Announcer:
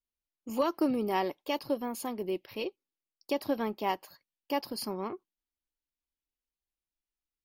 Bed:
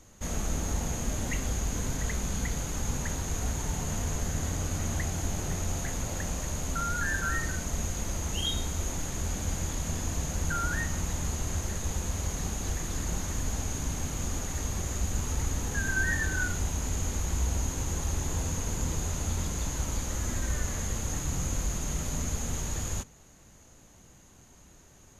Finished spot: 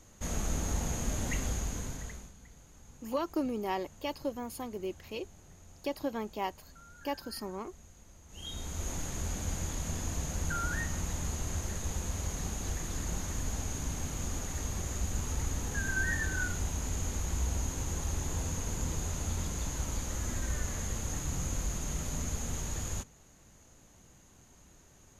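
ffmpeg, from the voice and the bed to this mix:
-filter_complex "[0:a]adelay=2550,volume=-4dB[a];[1:a]volume=18dB,afade=t=out:st=1.43:d=0.9:silence=0.0841395,afade=t=in:st=8.28:d=0.64:silence=0.1[b];[a][b]amix=inputs=2:normalize=0"

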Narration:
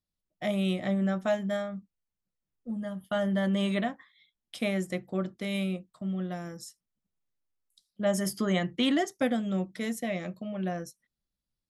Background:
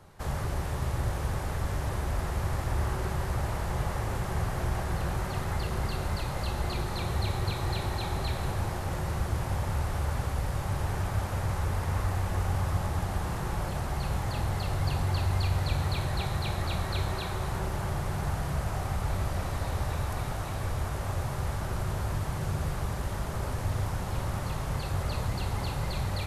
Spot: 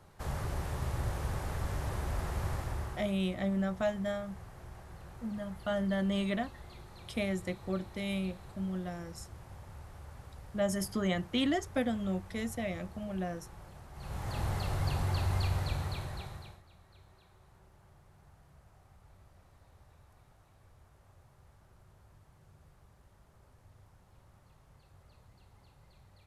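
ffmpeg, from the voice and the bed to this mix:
-filter_complex "[0:a]adelay=2550,volume=-4dB[a];[1:a]volume=11dB,afade=t=out:st=2.49:d=0.66:silence=0.188365,afade=t=in:st=13.93:d=0.52:silence=0.16788,afade=t=out:st=15.44:d=1.18:silence=0.0501187[b];[a][b]amix=inputs=2:normalize=0"

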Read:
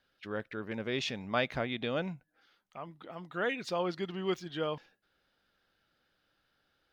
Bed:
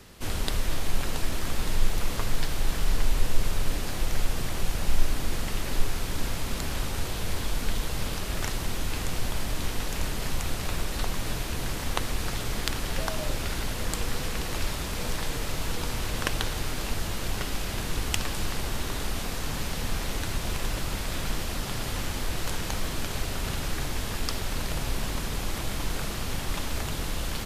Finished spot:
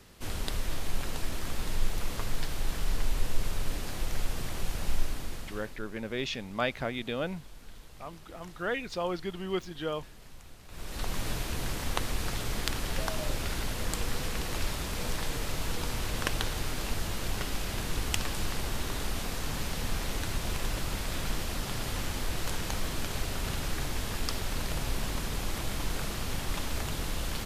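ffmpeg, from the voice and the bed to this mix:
-filter_complex "[0:a]adelay=5250,volume=0.5dB[a];[1:a]volume=13.5dB,afade=t=out:st=4.9:d=0.9:silence=0.158489,afade=t=in:st=10.68:d=0.49:silence=0.11885[b];[a][b]amix=inputs=2:normalize=0"

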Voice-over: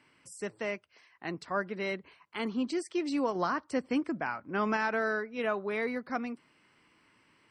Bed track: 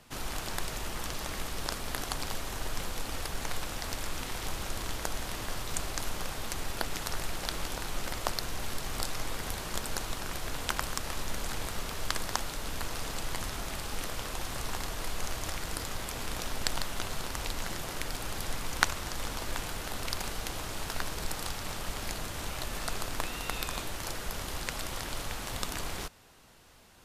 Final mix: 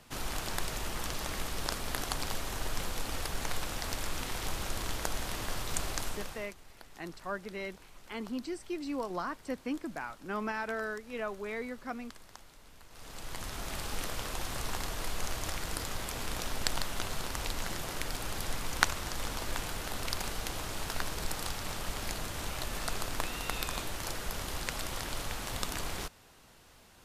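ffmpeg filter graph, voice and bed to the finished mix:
-filter_complex "[0:a]adelay=5750,volume=-5.5dB[a];[1:a]volume=19.5dB,afade=t=out:st=5.93:d=0.61:silence=0.1,afade=t=in:st=12.89:d=0.92:silence=0.105925[b];[a][b]amix=inputs=2:normalize=0"

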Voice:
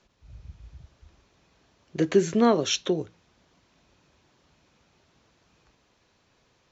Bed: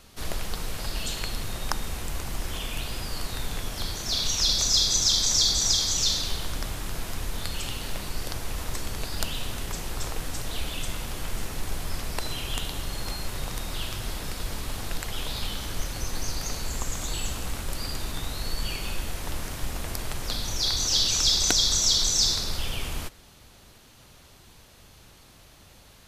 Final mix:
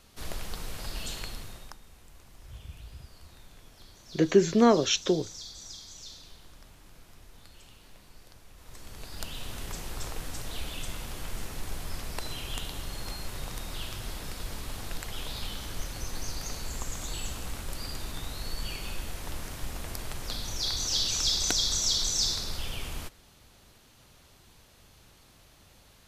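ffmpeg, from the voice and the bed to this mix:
-filter_complex "[0:a]adelay=2200,volume=0dB[a];[1:a]volume=11dB,afade=t=out:st=1.15:d=0.62:silence=0.158489,afade=t=in:st=8.57:d=1.1:silence=0.149624[b];[a][b]amix=inputs=2:normalize=0"

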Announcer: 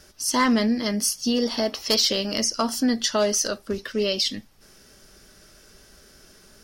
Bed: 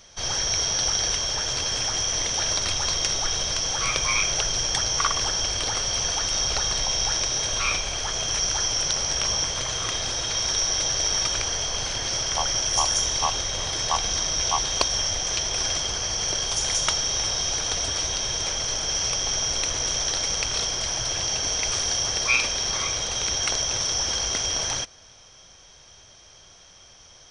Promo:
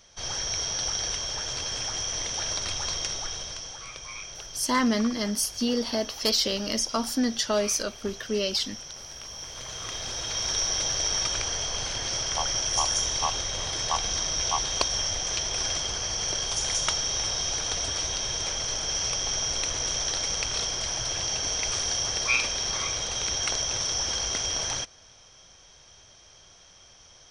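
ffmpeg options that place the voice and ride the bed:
-filter_complex "[0:a]adelay=4350,volume=-3.5dB[a];[1:a]volume=8dB,afade=t=out:st=2.94:d=0.91:silence=0.281838,afade=t=in:st=9.32:d=1.25:silence=0.211349[b];[a][b]amix=inputs=2:normalize=0"

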